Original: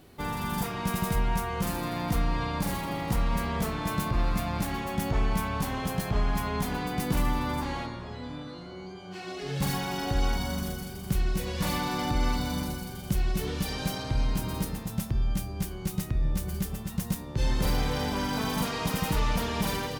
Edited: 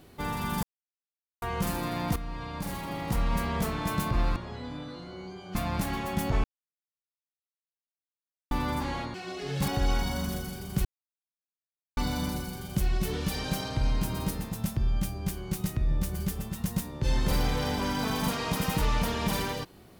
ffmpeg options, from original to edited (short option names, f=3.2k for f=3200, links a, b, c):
-filter_complex "[0:a]asplit=12[a][b][c][d][e][f][g][h][i][j][k][l];[a]atrim=end=0.63,asetpts=PTS-STARTPTS,afade=t=out:st=0.626:d=0.004:c=hsin[m];[b]atrim=start=0.63:end=1.42,asetpts=PTS-STARTPTS,volume=0[n];[c]atrim=start=1.42:end=2.16,asetpts=PTS-STARTPTS,afade=t=in:d=0.004:c=hsin,afade=t=out:st=0.736:d=0.004:c=hsin:silence=0.251189[o];[d]atrim=start=2.16:end=4.362,asetpts=PTS-STARTPTS,afade=t=in:d=1.2:silence=0.251189[p];[e]atrim=start=7.948:end=9.142[q];[f]atrim=start=4.358:end=5.25,asetpts=PTS-STARTPTS,afade=t=out:st=0.888:d=0.004:c=hsin[r];[g]atrim=start=5.25:end=7.32,asetpts=PTS-STARTPTS,volume=0[s];[h]atrim=start=7.32:end=7.952,asetpts=PTS-STARTPTS,afade=t=in:d=0.004:c=hsin[t];[i]atrim=start=9.138:end=9.682[u];[j]atrim=start=10.018:end=11.19,asetpts=PTS-STARTPTS,afade=t=out:st=1.168:d=0.004:c=hsin[v];[k]atrim=start=11.19:end=12.31,asetpts=PTS-STARTPTS,volume=0[w];[l]atrim=start=12.31,asetpts=PTS-STARTPTS,afade=t=in:d=0.004:c=hsin[x];[m][n][o][p]concat=n=4:v=0:a=1[y];[y][q]acrossfade=d=0.004:c1=hsin:c2=hsin[z];[r][s][t]concat=n=3:v=0:a=1[aa];[z][aa]acrossfade=d=0.004:c1=hsin:c2=hsin[ab];[ab][u]acrossfade=d=0.004:c1=hsin:c2=hsin[ac];[v][w][x]concat=n=3:v=0:a=1[ad];[ac][ad]acrossfade=d=0.004:c1=hsin:c2=hsin"